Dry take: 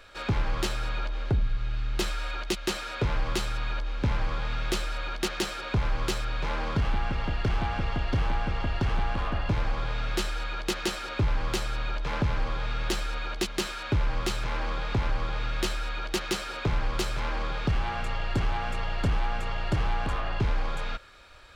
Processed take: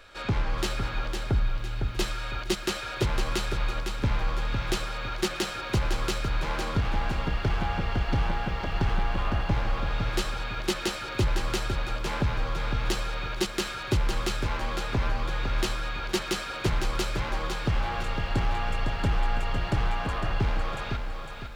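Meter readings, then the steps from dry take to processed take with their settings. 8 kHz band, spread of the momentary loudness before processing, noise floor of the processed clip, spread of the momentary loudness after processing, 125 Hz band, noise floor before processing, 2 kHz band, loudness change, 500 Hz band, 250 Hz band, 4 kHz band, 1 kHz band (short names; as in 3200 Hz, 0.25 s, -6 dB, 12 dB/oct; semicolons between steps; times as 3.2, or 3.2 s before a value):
+1.0 dB, 4 LU, -36 dBFS, 3 LU, +1.0 dB, -37 dBFS, +1.0 dB, +1.0 dB, +1.5 dB, +1.5 dB, +1.0 dB, +1.0 dB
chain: pre-echo 46 ms -24 dB; lo-fi delay 0.506 s, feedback 35%, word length 10-bit, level -6 dB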